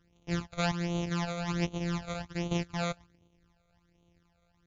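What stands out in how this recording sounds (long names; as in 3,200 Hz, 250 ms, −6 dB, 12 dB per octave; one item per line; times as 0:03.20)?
a buzz of ramps at a fixed pitch in blocks of 256 samples
phaser sweep stages 12, 1.3 Hz, lowest notch 290–1,700 Hz
MP3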